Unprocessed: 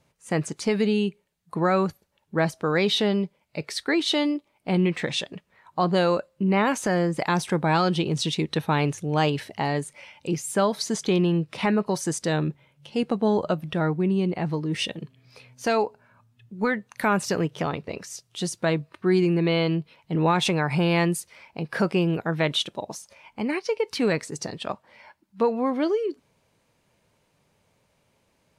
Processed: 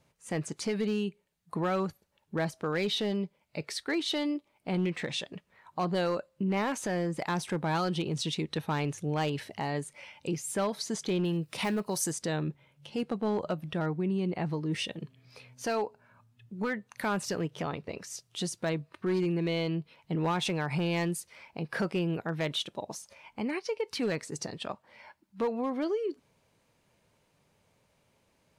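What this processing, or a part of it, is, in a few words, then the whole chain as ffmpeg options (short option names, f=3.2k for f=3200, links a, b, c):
clipper into limiter: -filter_complex "[0:a]asoftclip=type=hard:threshold=-16dB,alimiter=limit=-21dB:level=0:latency=1:release=285,asettb=1/sr,asplit=3[a][b][c];[a]atrim=end=11.254[d];[b]atrim=start=11.25:end=12.12,asetpts=PTS-STARTPTS,afade=t=in:d=0.004:c=qsin,afade=t=out:st=0.866:d=0.004:c=qsin,aemphasis=mode=production:type=50fm[e];[c]atrim=start=12.116[f];[d][e]acrossfade=d=0.004:c1=hsin:c2=qsin[g];[g][f]acrossfade=d=0.004:c1=qsin:c2=hsin,volume=-2.5dB"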